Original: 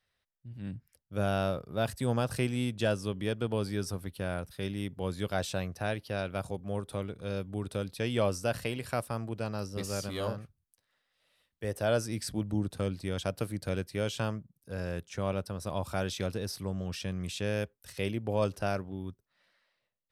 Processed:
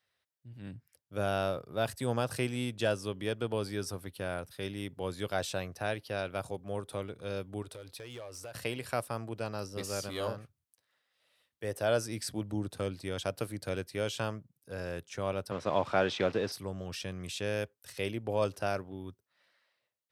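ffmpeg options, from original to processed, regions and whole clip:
-filter_complex "[0:a]asettb=1/sr,asplit=3[a][b][c];[a]atrim=end=7.624[d];[b]atrim=start=7.62:end=8.55,asetpts=PTS-STARTPTS,afade=t=in:d=0.004:c=qsin,afade=t=out:st=0.926:d=0.004:c=qsin,equalizer=f=200:w=2.4:g=-13,acompressor=threshold=-38dB:ratio=10:attack=3.2:release=140:knee=1:detection=peak,asoftclip=type=hard:threshold=-38dB[e];[c]atrim=start=8.546[f];[d][e]acrossfade=d=0.004:c1=hsin:c2=qsin[g];[g][f]acrossfade=d=0.004:c1=qsin:c2=hsin,asettb=1/sr,asplit=3[h][i][j];[h]atrim=end=15.514[k];[i]atrim=start=15.51:end=16.52,asetpts=PTS-STARTPTS,afade=t=in:d=0.004:c=qsin,afade=t=out:st=1.006:d=0.004:c=qsin,acrusher=bits=9:dc=4:mix=0:aa=0.000001,highpass=150,lowpass=3.1k,acontrast=76[l];[j]atrim=start=16.516[m];[k][l]acrossfade=d=0.004:c1=hsin:c2=qsin[n];[n][m]acrossfade=d=0.004:c1=qsin:c2=hsin,highpass=110,equalizer=f=190:t=o:w=0.84:g=-6"

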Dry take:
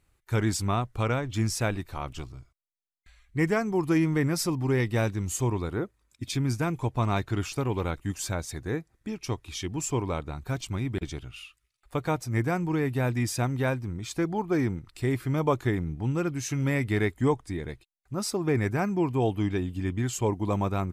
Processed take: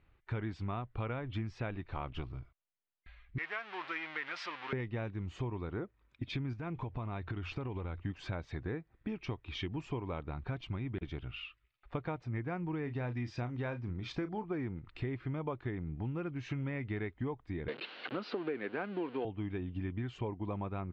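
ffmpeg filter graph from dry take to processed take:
-filter_complex "[0:a]asettb=1/sr,asplit=3[a][b][c];[a]atrim=end=3.384[d];[b]atrim=start=3.38:end=4.73,asetpts=PTS-STARTPTS,afade=t=in:d=0.004:c=qsin,afade=t=out:st=1.346:d=0.004:c=qsin,aeval=exprs='val(0)+0.5*0.0376*sgn(val(0))':c=same,highpass=1.4k,equalizer=f=10k:w=1.1:g=-9[e];[c]atrim=start=4.726[f];[d][e]acrossfade=d=0.004:c1=hsin:c2=qsin[g];[g][f]acrossfade=d=0.004:c1=qsin:c2=hsin,asettb=1/sr,asplit=3[h][i][j];[h]atrim=end=6.534[k];[i]atrim=start=6.53:end=8.05,asetpts=PTS-STARTPTS,afade=t=in:d=0.004:c=qsin,afade=t=out:st=1.516:d=0.004:c=qsin,equalizer=f=87:w=4.9:g=6.5,acompressor=threshold=-32dB:ratio=5:attack=3.2:release=140:knee=1:detection=peak[l];[j]atrim=start=8.046[m];[k][l]acrossfade=d=0.004:c1=hsin:c2=qsin[n];[n][m]acrossfade=d=0.004:c1=qsin:c2=hsin,asettb=1/sr,asplit=3[o][p][q];[o]atrim=end=12.834[r];[p]atrim=start=12.83:end=14.44,asetpts=PTS-STARTPTS,afade=t=in:d=0.004:c=qsin,afade=t=out:st=1.606:d=0.004:c=qsin,equalizer=f=5.4k:w=1.9:g=8.5,asplit=2[s][t];[t]adelay=33,volume=-11.5dB[u];[s][u]amix=inputs=2:normalize=0,atrim=end_sample=71001[v];[q]atrim=start=14.436[w];[r][v]acrossfade=d=0.004:c1=hsin:c2=qsin[x];[x][w]acrossfade=d=0.004:c1=qsin:c2=hsin,asettb=1/sr,asplit=3[y][z][aa];[y]atrim=end=17.684[ab];[z]atrim=start=17.68:end=19.25,asetpts=PTS-STARTPTS,afade=t=in:d=0.004:c=qsin,afade=t=out:st=1.566:d=0.004:c=qsin,aeval=exprs='val(0)+0.5*0.02*sgn(val(0))':c=same,highpass=f=220:w=0.5412,highpass=f=220:w=1.3066,equalizer=f=480:t=q:w=4:g=7,equalizer=f=1.5k:t=q:w=4:g=6,equalizer=f=2.9k:t=q:w=4:g=7,equalizer=f=4.3k:t=q:w=4:g=9,lowpass=f=5k:w=0.5412,lowpass=f=5k:w=1.3066[ac];[aa]atrim=start=19.246[ad];[ab][ac]acrossfade=d=0.004:c1=hsin:c2=qsin[ae];[ae][ad]acrossfade=d=0.004:c1=qsin:c2=hsin,lowpass=f=3.2k:w=0.5412,lowpass=f=3.2k:w=1.3066,acompressor=threshold=-36dB:ratio=6,volume=1dB"

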